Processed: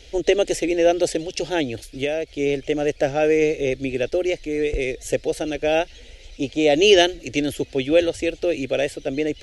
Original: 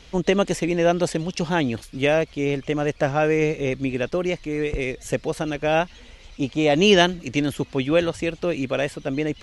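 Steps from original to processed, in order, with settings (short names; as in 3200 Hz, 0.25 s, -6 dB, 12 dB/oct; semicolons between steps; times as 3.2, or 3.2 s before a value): 1.63–2.4 compressor, threshold -22 dBFS, peak gain reduction 7 dB; fixed phaser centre 450 Hz, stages 4; gain +3.5 dB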